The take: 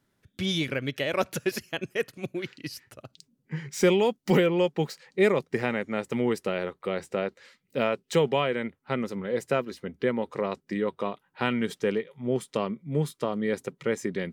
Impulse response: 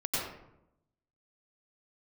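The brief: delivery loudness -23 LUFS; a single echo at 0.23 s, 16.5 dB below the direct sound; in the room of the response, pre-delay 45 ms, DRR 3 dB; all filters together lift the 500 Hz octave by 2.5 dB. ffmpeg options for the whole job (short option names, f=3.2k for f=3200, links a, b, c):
-filter_complex "[0:a]equalizer=f=500:t=o:g=3,aecho=1:1:230:0.15,asplit=2[a][b];[1:a]atrim=start_sample=2205,adelay=45[c];[b][c]afir=irnorm=-1:irlink=0,volume=-10dB[d];[a][d]amix=inputs=2:normalize=0,volume=1.5dB"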